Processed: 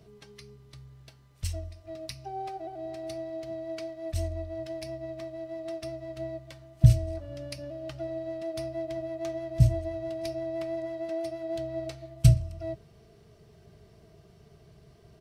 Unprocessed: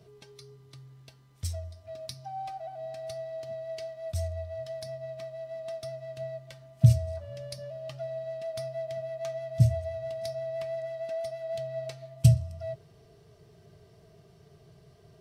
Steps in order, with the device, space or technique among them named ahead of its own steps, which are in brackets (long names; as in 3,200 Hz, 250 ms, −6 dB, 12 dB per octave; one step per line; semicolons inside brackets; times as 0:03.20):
octave pedal (pitch-shifted copies added −12 semitones −6 dB)